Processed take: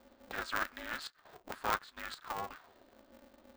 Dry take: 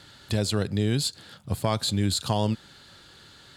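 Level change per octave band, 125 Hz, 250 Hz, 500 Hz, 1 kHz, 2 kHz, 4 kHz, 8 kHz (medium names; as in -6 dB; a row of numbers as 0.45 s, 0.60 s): -32.0 dB, -23.5 dB, -16.0 dB, -4.0 dB, +1.5 dB, -16.5 dB, -18.5 dB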